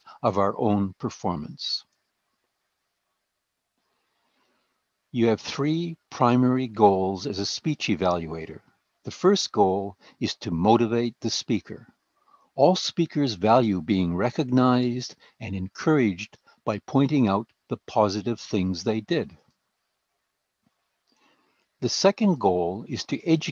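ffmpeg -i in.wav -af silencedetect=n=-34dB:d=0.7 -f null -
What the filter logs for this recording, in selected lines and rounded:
silence_start: 1.79
silence_end: 5.14 | silence_duration: 3.35
silence_start: 11.76
silence_end: 12.58 | silence_duration: 0.82
silence_start: 19.26
silence_end: 21.82 | silence_duration: 2.56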